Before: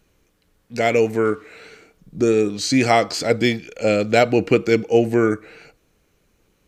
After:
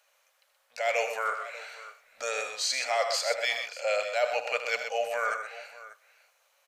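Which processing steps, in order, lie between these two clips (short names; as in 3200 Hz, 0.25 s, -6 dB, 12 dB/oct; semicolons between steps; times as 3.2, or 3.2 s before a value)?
elliptic high-pass 570 Hz, stop band 40 dB; reverse; compressor 6:1, threshold -25 dBFS, peak gain reduction 13 dB; reverse; tapped delay 77/126/590 ms -11/-8/-17 dB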